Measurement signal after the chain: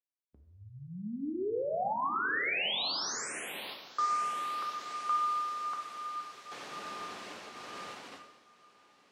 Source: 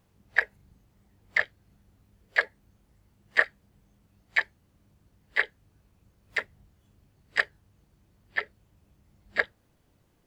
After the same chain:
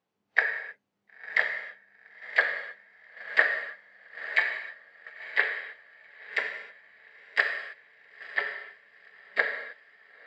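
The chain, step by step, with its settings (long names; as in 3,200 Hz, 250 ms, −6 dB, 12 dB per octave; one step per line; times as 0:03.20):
feedback delay with all-pass diffusion 963 ms, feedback 61%, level −10.5 dB
noise gate −39 dBFS, range −11 dB
band-pass filter 300–4,900 Hz
reverb whose tail is shaped and stops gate 340 ms falling, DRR 3 dB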